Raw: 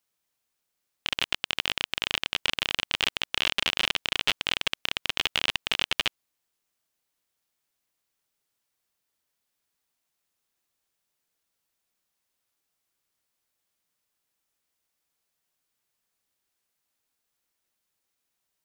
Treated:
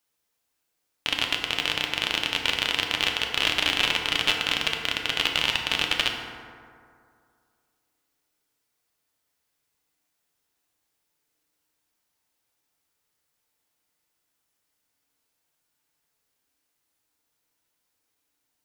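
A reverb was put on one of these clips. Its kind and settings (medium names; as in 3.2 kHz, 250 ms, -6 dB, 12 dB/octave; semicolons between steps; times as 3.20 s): FDN reverb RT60 2.3 s, low-frequency decay 0.95×, high-frequency decay 0.4×, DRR 1 dB; trim +1.5 dB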